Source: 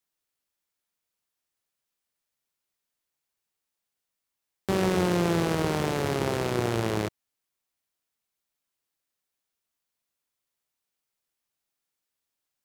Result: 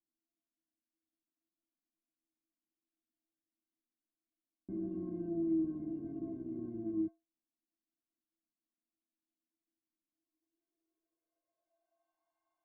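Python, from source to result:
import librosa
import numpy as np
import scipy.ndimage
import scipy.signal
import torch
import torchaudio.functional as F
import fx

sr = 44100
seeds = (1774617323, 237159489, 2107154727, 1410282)

y = fx.dmg_noise_colour(x, sr, seeds[0], colour='blue', level_db=-57.0)
y = fx.filter_sweep_lowpass(y, sr, from_hz=240.0, to_hz=860.0, start_s=10.05, end_s=12.23, q=5.3)
y = fx.stiff_resonator(y, sr, f0_hz=320.0, decay_s=0.29, stiffness=0.03)
y = F.gain(torch.from_numpy(y), 3.0).numpy()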